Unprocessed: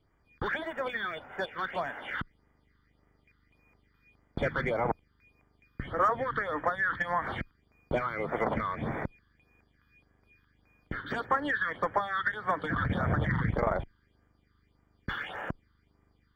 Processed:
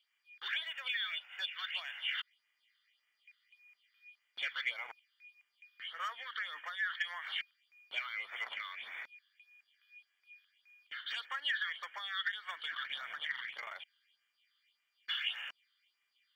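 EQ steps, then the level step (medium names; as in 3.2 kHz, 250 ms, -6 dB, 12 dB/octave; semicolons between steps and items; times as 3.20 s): resonant high-pass 2.8 kHz, resonance Q 5.3; -1.0 dB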